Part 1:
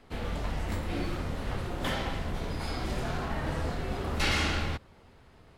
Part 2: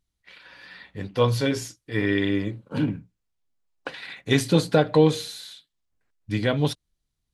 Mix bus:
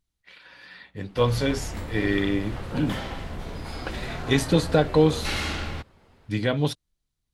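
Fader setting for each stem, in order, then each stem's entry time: -1.0 dB, -1.0 dB; 1.05 s, 0.00 s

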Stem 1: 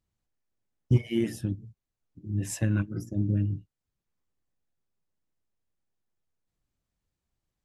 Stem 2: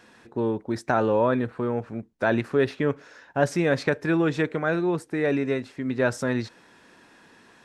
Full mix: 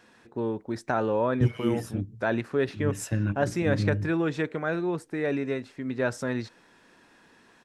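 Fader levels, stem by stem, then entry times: -1.0 dB, -4.0 dB; 0.50 s, 0.00 s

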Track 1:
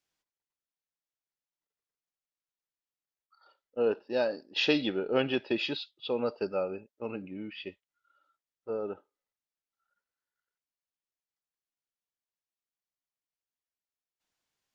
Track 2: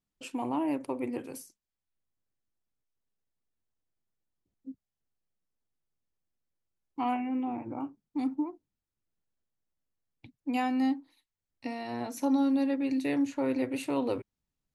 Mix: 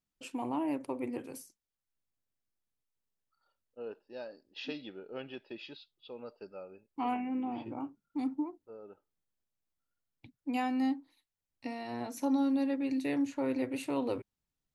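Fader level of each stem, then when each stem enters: -15.0 dB, -3.0 dB; 0.00 s, 0.00 s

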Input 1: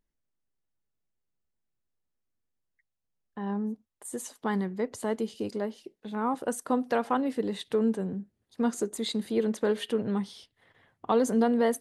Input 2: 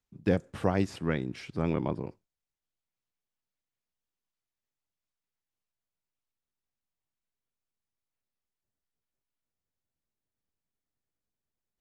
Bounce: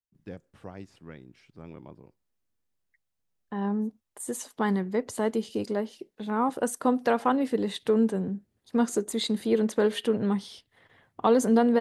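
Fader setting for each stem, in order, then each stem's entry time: +3.0 dB, -15.5 dB; 0.15 s, 0.00 s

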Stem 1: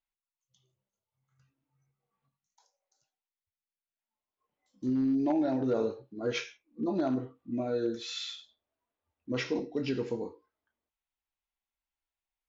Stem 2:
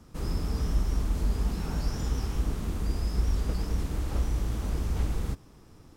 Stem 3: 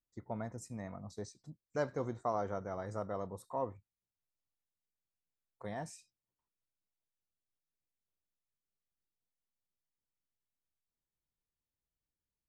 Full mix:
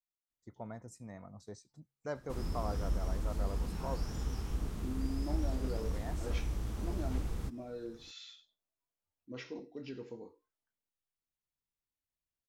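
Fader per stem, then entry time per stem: -12.5 dB, -7.5 dB, -4.5 dB; 0.00 s, 2.15 s, 0.30 s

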